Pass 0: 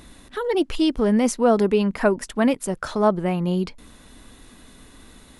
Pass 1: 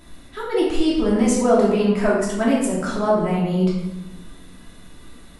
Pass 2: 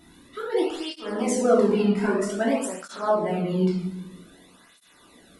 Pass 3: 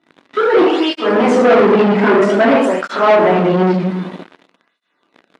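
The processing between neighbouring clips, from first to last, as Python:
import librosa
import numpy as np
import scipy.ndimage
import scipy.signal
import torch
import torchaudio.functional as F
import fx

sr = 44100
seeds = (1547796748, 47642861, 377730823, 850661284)

y1 = fx.room_shoebox(x, sr, seeds[0], volume_m3=470.0, walls='mixed', distance_m=2.9)
y1 = fx.dynamic_eq(y1, sr, hz=7500.0, q=2.0, threshold_db=-50.0, ratio=4.0, max_db=7)
y1 = y1 * librosa.db_to_amplitude(-6.5)
y2 = fx.flanger_cancel(y1, sr, hz=0.52, depth_ms=1.9)
y2 = y2 * librosa.db_to_amplitude(-1.5)
y3 = fx.leveller(y2, sr, passes=5)
y3 = fx.bandpass_edges(y3, sr, low_hz=240.0, high_hz=2600.0)
y3 = y3 * librosa.db_to_amplitude(2.0)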